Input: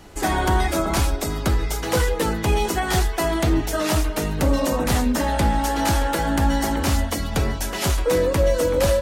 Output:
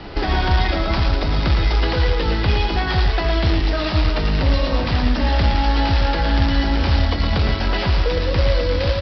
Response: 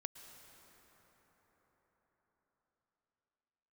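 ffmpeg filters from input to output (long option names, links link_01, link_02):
-filter_complex "[0:a]acontrast=81,alimiter=limit=-7.5dB:level=0:latency=1:release=441,acrossover=split=110|2100[link_01][link_02][link_03];[link_01]acompressor=threshold=-19dB:ratio=4[link_04];[link_02]acompressor=threshold=-28dB:ratio=4[link_05];[link_03]acompressor=threshold=-31dB:ratio=4[link_06];[link_04][link_05][link_06]amix=inputs=3:normalize=0,aresample=11025,acrusher=bits=3:mode=log:mix=0:aa=0.000001,aresample=44100,aecho=1:1:112:0.501,volume=3.5dB"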